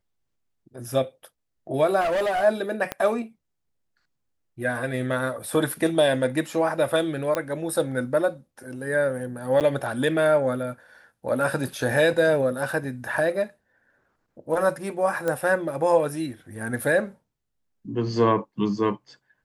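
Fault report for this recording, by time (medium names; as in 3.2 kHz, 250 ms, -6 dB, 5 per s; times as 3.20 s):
2.00–2.44 s: clipped -21 dBFS
2.92 s: pop -12 dBFS
7.35 s: pop -12 dBFS
9.60–9.61 s: dropout 8.4 ms
15.28 s: pop -14 dBFS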